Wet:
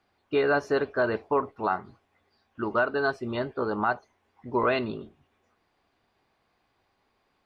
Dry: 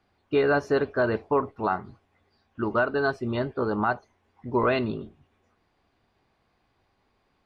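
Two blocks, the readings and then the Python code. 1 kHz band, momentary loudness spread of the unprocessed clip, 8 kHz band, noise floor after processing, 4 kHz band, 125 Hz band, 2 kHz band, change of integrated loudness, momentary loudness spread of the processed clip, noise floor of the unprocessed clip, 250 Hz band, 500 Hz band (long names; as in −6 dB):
−0.5 dB, 9 LU, can't be measured, −73 dBFS, 0.0 dB, −6.0 dB, 0.0 dB, −1.5 dB, 8 LU, −71 dBFS, −3.5 dB, −1.5 dB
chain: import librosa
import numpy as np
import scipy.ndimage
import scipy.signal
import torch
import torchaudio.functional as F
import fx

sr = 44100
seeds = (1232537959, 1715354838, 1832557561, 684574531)

y = fx.low_shelf(x, sr, hz=240.0, db=-7.5)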